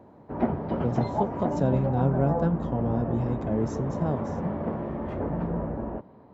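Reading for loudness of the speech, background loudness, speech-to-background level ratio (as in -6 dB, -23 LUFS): -28.5 LUFS, -31.0 LUFS, 2.5 dB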